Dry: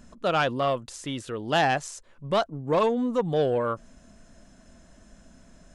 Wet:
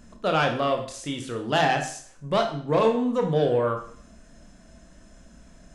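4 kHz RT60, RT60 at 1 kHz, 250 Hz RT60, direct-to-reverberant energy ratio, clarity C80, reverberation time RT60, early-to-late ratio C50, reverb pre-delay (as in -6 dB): 0.50 s, 0.50 s, 0.50 s, 3.0 dB, 12.0 dB, 0.55 s, 8.0 dB, 23 ms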